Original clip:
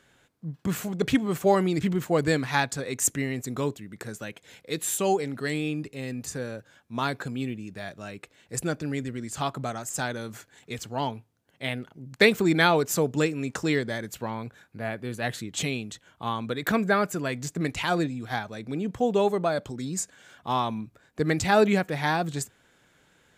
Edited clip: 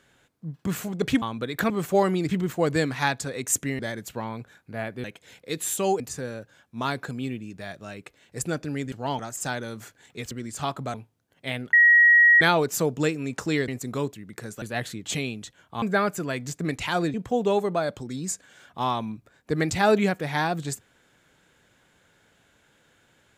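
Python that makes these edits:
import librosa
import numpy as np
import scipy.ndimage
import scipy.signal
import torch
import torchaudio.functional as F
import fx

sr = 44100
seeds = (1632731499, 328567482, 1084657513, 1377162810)

y = fx.edit(x, sr, fx.swap(start_s=3.31, length_s=0.94, other_s=13.85, other_length_s=1.25),
    fx.cut(start_s=5.21, length_s=0.96),
    fx.swap(start_s=9.09, length_s=0.63, other_s=10.84, other_length_s=0.27),
    fx.bleep(start_s=11.9, length_s=0.68, hz=1900.0, db=-12.0),
    fx.move(start_s=16.3, length_s=0.48, to_s=1.22),
    fx.cut(start_s=18.1, length_s=0.73), tone=tone)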